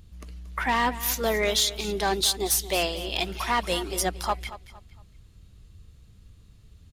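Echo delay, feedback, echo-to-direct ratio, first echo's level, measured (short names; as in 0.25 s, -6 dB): 0.23 s, 32%, -14.5 dB, -15.0 dB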